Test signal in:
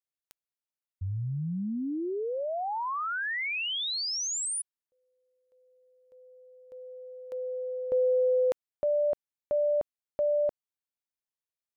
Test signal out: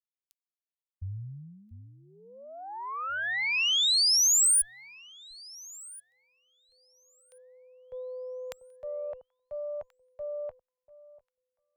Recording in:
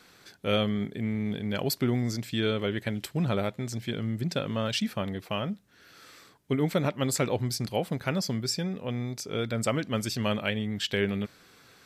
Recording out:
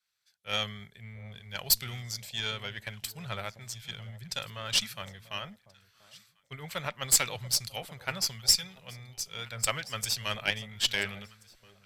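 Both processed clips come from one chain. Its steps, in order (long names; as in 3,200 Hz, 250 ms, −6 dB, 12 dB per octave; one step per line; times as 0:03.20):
guitar amp tone stack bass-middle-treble 10-0-10
automatic gain control gain up to 5 dB
harmonic generator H 4 −17 dB, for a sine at −12 dBFS
on a send: delay that swaps between a low-pass and a high-pass 691 ms, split 890 Hz, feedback 52%, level −11 dB
on the sum: multiband upward and downward expander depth 70%
level −1 dB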